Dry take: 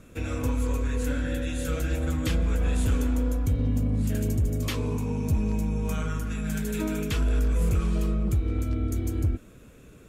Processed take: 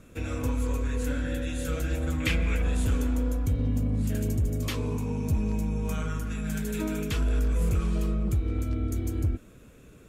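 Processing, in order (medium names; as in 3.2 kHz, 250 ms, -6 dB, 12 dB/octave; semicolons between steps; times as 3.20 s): 2.20–2.62 s: peaking EQ 2.3 kHz +13.5 dB 0.75 oct; trim -1.5 dB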